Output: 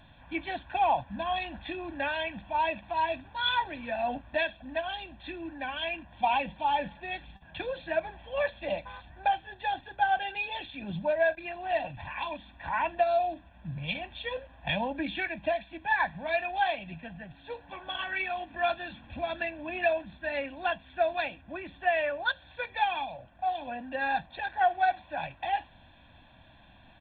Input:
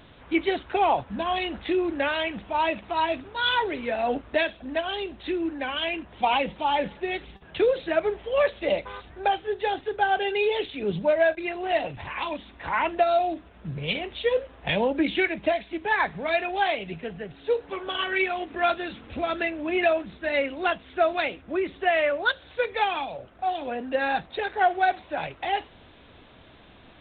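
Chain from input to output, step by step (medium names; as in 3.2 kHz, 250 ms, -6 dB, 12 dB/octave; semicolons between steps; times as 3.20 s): comb 1.2 ms, depth 94%; trim -8 dB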